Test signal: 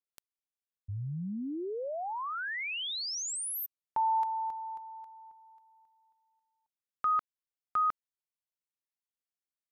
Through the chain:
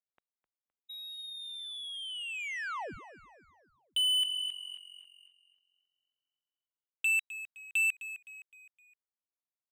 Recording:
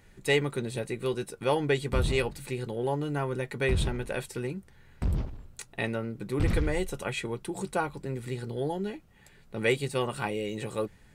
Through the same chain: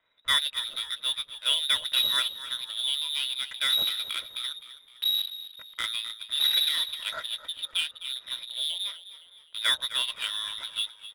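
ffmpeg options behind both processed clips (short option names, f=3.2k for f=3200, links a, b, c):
-filter_complex "[0:a]lowpass=f=3.3k:t=q:w=0.5098,lowpass=f=3.3k:t=q:w=0.6013,lowpass=f=3.3k:t=q:w=0.9,lowpass=f=3.3k:t=q:w=2.563,afreqshift=-3900,adynamicsmooth=sensitivity=6.5:basefreq=1.1k,asplit=5[a][b][c][d][e];[b]adelay=258,afreqshift=-45,volume=-14dB[f];[c]adelay=516,afreqshift=-90,volume=-21.3dB[g];[d]adelay=774,afreqshift=-135,volume=-28.7dB[h];[e]adelay=1032,afreqshift=-180,volume=-36dB[i];[a][f][g][h][i]amix=inputs=5:normalize=0"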